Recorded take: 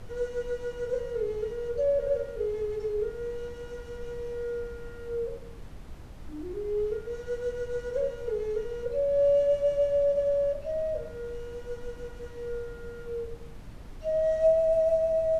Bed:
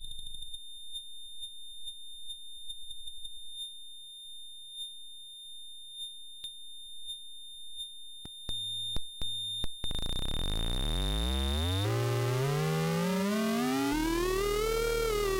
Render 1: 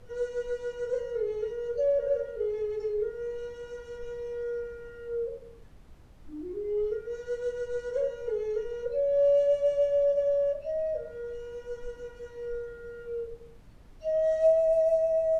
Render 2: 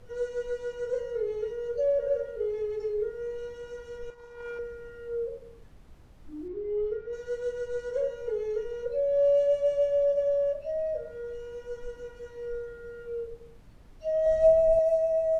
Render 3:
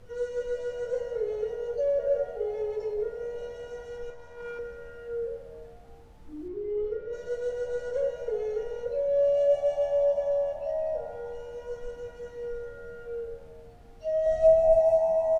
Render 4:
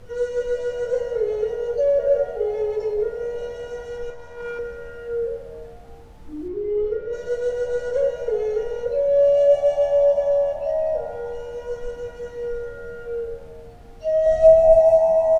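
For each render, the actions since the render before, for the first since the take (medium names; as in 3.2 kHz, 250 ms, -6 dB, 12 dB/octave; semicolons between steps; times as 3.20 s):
noise print and reduce 9 dB
4.10–4.59 s: power-law waveshaper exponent 3; 6.48–7.13 s: distance through air 160 m; 14.26–14.79 s: bass shelf 310 Hz +12 dB
frequency-shifting echo 191 ms, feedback 60%, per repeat +81 Hz, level -19.5 dB; Schroeder reverb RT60 2.4 s, combs from 25 ms, DRR 10 dB
trim +7.5 dB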